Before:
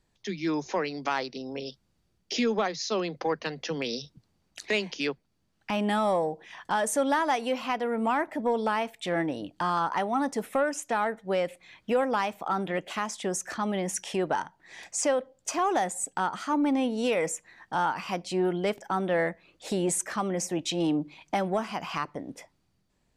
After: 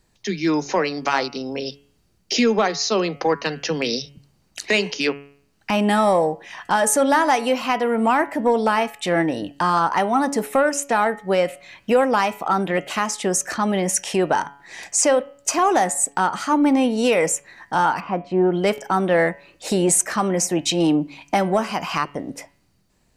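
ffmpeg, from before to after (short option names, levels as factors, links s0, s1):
-filter_complex "[0:a]asplit=3[s0][s1][s2];[s0]afade=t=out:st=17.99:d=0.02[s3];[s1]lowpass=1300,afade=t=in:st=17.99:d=0.02,afade=t=out:st=18.52:d=0.02[s4];[s2]afade=t=in:st=18.52:d=0.02[s5];[s3][s4][s5]amix=inputs=3:normalize=0,highshelf=f=5800:g=4.5,bandreject=f=3400:w=13,bandreject=f=141.3:t=h:w=4,bandreject=f=282.6:t=h:w=4,bandreject=f=423.9:t=h:w=4,bandreject=f=565.2:t=h:w=4,bandreject=f=706.5:t=h:w=4,bandreject=f=847.8:t=h:w=4,bandreject=f=989.1:t=h:w=4,bandreject=f=1130.4:t=h:w=4,bandreject=f=1271.7:t=h:w=4,bandreject=f=1413:t=h:w=4,bandreject=f=1554.3:t=h:w=4,bandreject=f=1695.6:t=h:w=4,bandreject=f=1836.9:t=h:w=4,bandreject=f=1978.2:t=h:w=4,bandreject=f=2119.5:t=h:w=4,bandreject=f=2260.8:t=h:w=4,bandreject=f=2402.1:t=h:w=4,bandreject=f=2543.4:t=h:w=4,bandreject=f=2684.7:t=h:w=4,bandreject=f=2826:t=h:w=4,bandreject=f=2967.3:t=h:w=4,bandreject=f=3108.6:t=h:w=4,bandreject=f=3249.9:t=h:w=4,bandreject=f=3391.2:t=h:w=4,volume=2.66"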